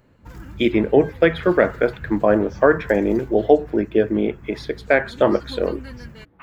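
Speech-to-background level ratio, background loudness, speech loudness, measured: 19.5 dB, −39.0 LKFS, −19.5 LKFS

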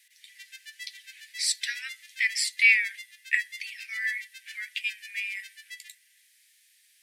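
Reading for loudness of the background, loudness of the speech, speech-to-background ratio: −44.0 LKFS, −26.5 LKFS, 17.5 dB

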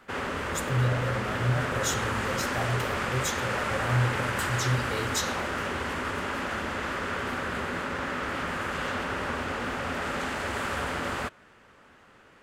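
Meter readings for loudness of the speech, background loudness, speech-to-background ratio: −31.0 LKFS, −30.5 LKFS, −0.5 dB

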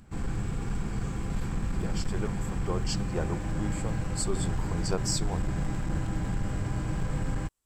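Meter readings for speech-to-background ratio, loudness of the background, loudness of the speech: −2.5 dB, −33.0 LKFS, −35.5 LKFS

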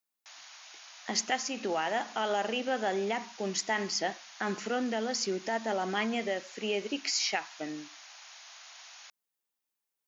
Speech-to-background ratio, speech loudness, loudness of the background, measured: 16.5 dB, −32.0 LKFS, −48.5 LKFS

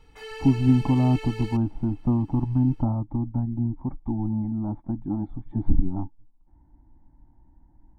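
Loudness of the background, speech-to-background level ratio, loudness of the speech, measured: −39.5 LKFS, 14.0 dB, −25.5 LKFS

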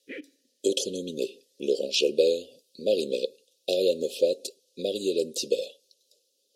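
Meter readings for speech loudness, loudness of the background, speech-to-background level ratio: −28.0 LKFS, −43.0 LKFS, 15.0 dB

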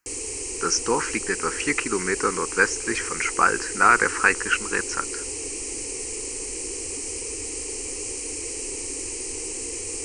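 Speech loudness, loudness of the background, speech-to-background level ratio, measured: −23.0 LKFS, −29.0 LKFS, 6.0 dB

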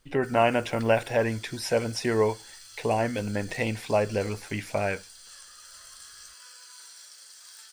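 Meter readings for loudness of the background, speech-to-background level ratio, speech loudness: −46.0 LKFS, 18.5 dB, −27.5 LKFS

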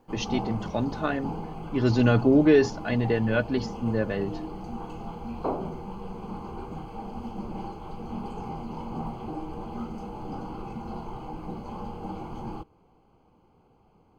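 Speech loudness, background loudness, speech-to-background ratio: −25.0 LKFS, −37.0 LKFS, 12.0 dB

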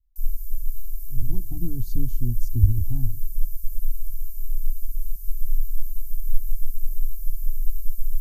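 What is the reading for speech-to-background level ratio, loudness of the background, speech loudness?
6.5 dB, −35.0 LKFS, −28.5 LKFS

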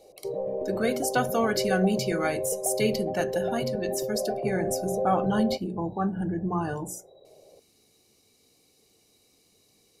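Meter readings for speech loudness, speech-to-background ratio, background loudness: −29.0 LKFS, 2.0 dB, −31.0 LKFS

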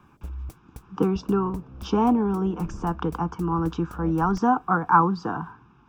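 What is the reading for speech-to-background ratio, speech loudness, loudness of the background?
17.0 dB, −24.5 LKFS, −41.5 LKFS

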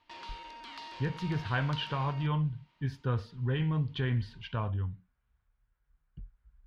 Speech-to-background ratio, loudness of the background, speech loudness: 12.5 dB, −46.0 LKFS, −33.5 LKFS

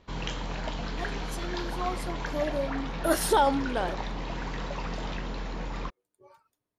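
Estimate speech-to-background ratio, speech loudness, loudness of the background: 5.5 dB, −30.0 LKFS, −35.5 LKFS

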